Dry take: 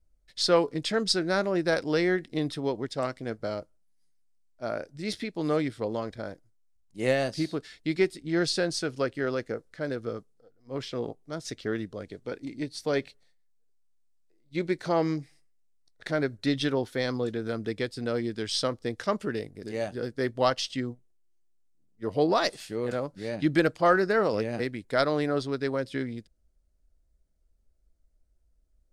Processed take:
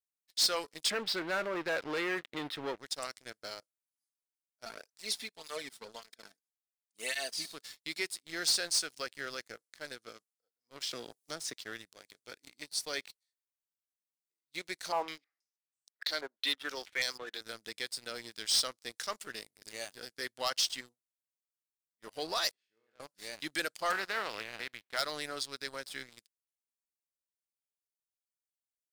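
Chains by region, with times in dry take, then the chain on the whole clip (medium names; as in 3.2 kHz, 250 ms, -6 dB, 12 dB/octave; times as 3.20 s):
0.90–2.78 s: waveshaping leveller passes 3 + distance through air 470 m
4.65–7.52 s: comb 4.5 ms, depth 60% + cancelling through-zero flanger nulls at 1.8 Hz, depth 2.1 ms
10.91–11.54 s: bass shelf 490 Hz +8 dB + three bands compressed up and down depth 100%
14.92–17.41 s: high-pass 260 Hz 24 dB/octave + step-sequenced low-pass 6.2 Hz 940–7900 Hz
22.51–23.00 s: low-pass 2.2 kHz + feedback comb 56 Hz, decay 1.8 s, mix 90%
23.90–24.96 s: spectral contrast reduction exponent 0.56 + distance through air 400 m
whole clip: differentiator; waveshaping leveller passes 3; trim -3 dB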